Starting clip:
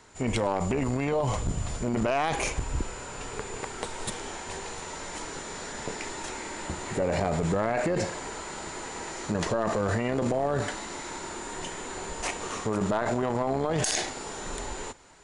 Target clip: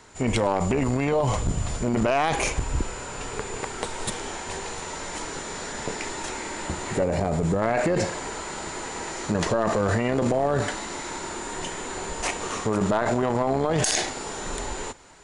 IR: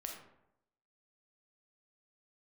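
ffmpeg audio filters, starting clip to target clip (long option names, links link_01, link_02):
-filter_complex "[0:a]asettb=1/sr,asplit=3[link_01][link_02][link_03];[link_01]atrim=end=7.044[link_04];[link_02]atrim=start=7.04:end=7.62,asetpts=PTS-STARTPTS,afade=type=in:duration=0.004:curve=qsin,afade=type=out:start_time=0.576:duration=0.004:curve=qsin,equalizer=frequency=2500:width=0.32:gain=-6.5[link_05];[link_03]atrim=start=7.616[link_06];[link_04][link_05]acrossfade=duration=0.004:curve1=hsin:curve2=qsin[link_07];[link_07][link_06]acrossfade=duration=0.004:curve1=qsin:curve2=hsin,volume=4dB"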